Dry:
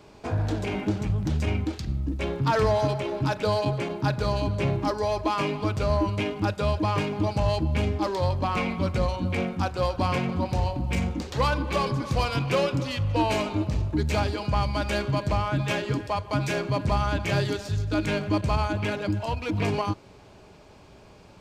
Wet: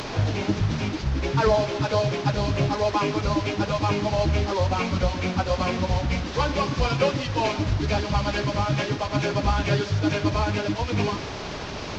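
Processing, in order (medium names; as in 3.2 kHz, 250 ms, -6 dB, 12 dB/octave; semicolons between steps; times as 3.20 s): one-bit delta coder 32 kbps, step -28.5 dBFS; plain phase-vocoder stretch 0.56×; trim +5 dB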